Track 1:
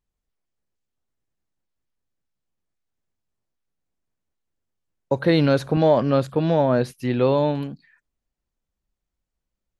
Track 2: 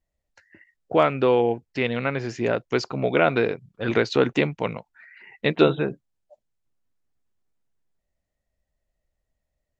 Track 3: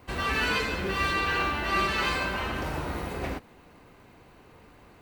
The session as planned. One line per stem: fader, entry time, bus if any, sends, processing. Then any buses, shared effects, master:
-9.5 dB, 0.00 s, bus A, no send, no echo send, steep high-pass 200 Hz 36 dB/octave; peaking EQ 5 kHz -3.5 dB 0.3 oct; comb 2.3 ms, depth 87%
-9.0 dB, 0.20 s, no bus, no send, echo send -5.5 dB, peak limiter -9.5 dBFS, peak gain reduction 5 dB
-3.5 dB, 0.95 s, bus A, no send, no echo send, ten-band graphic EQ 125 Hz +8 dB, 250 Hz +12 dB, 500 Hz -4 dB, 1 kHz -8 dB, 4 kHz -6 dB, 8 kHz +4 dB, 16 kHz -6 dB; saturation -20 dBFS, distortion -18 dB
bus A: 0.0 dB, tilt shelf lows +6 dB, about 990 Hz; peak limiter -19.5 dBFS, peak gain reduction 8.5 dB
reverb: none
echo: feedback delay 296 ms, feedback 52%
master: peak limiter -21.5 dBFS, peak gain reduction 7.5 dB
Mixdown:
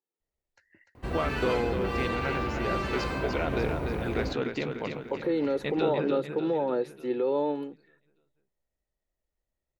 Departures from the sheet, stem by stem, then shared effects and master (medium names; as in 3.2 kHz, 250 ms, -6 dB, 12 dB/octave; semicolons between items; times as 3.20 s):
stem 3: missing ten-band graphic EQ 125 Hz +8 dB, 250 Hz +12 dB, 500 Hz -4 dB, 1 kHz -8 dB, 4 kHz -6 dB, 8 kHz +4 dB, 16 kHz -6 dB; master: missing peak limiter -21.5 dBFS, peak gain reduction 7.5 dB